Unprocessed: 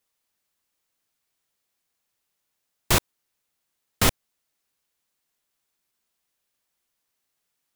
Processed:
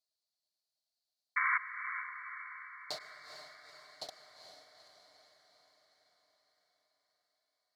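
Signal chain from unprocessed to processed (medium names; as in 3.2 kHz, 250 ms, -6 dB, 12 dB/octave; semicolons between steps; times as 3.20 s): comb filter that takes the minimum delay 6.7 ms; compression, threshold -22 dBFS, peak gain reduction 7 dB; tremolo saw down 9.3 Hz, depth 100%; added noise violet -69 dBFS; two resonant band-passes 1.7 kHz, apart 2.7 oct; painted sound noise, 1.36–1.58 s, 1–2.3 kHz -30 dBFS; echo that smears into a reverb 450 ms, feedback 59%, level -8.5 dB; on a send at -13 dB: reverberation RT60 2.9 s, pre-delay 91 ms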